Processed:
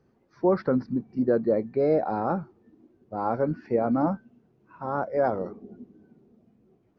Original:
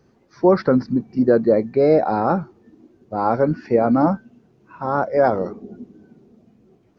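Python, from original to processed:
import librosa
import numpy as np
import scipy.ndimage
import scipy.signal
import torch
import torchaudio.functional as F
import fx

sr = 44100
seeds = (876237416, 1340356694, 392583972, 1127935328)

y = fx.high_shelf(x, sr, hz=3800.0, db=-10.0)
y = y * 10.0 ** (-7.5 / 20.0)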